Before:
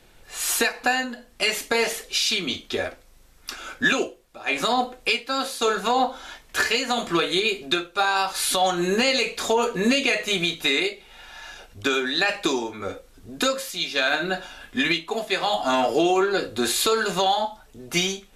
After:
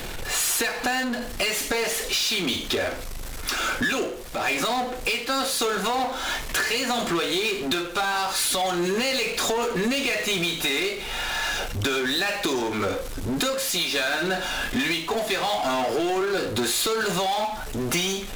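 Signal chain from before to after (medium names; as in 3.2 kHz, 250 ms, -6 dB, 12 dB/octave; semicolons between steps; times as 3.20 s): compression, threshold -34 dBFS, peak gain reduction 17 dB; power-law waveshaper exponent 0.5; trim +3.5 dB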